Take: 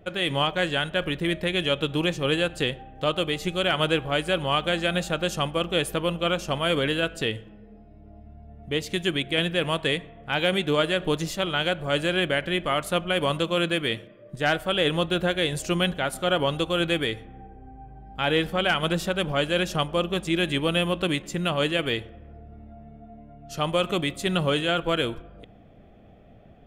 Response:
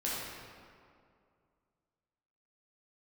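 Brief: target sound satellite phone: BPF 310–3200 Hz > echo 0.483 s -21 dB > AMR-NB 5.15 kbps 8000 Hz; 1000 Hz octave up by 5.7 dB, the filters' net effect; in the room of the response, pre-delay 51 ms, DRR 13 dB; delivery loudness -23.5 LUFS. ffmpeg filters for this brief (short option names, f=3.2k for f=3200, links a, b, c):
-filter_complex "[0:a]equalizer=f=1k:t=o:g=8,asplit=2[a][b];[1:a]atrim=start_sample=2205,adelay=51[c];[b][c]afir=irnorm=-1:irlink=0,volume=-18.5dB[d];[a][d]amix=inputs=2:normalize=0,highpass=310,lowpass=3.2k,aecho=1:1:483:0.0891,volume=2.5dB" -ar 8000 -c:a libopencore_amrnb -b:a 5150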